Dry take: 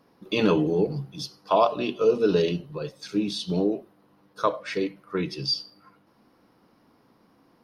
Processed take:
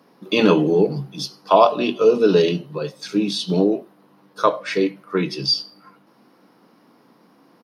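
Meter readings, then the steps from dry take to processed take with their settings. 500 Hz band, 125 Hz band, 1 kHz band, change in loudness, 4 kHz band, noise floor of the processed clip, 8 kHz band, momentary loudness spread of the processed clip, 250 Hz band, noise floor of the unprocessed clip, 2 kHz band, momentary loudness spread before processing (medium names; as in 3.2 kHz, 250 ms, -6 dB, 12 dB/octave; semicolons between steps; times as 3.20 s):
+6.5 dB, +4.5 dB, +7.0 dB, +6.5 dB, +7.0 dB, -56 dBFS, +6.5 dB, 13 LU, +6.0 dB, -62 dBFS, +7.0 dB, 13 LU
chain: high-pass 150 Hz 24 dB/octave; doubling 21 ms -13 dB; trim +6.5 dB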